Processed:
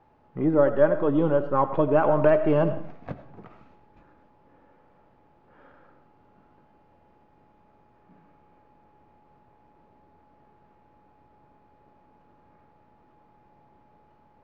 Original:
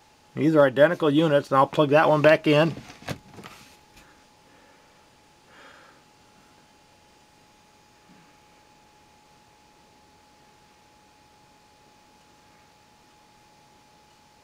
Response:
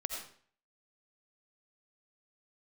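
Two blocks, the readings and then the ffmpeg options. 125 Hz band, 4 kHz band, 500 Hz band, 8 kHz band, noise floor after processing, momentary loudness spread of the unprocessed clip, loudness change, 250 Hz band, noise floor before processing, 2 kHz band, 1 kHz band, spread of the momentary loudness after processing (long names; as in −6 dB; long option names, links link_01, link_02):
−2.0 dB, below −15 dB, −1.5 dB, can't be measured, −61 dBFS, 20 LU, −2.5 dB, −2.0 dB, −57 dBFS, −10.0 dB, −3.5 dB, 20 LU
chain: -filter_complex "[0:a]aeval=exprs='if(lt(val(0),0),0.708*val(0),val(0))':channel_layout=same,lowpass=1100,asplit=2[link_01][link_02];[1:a]atrim=start_sample=2205[link_03];[link_02][link_03]afir=irnorm=-1:irlink=0,volume=-5dB[link_04];[link_01][link_04]amix=inputs=2:normalize=0,volume=-4dB"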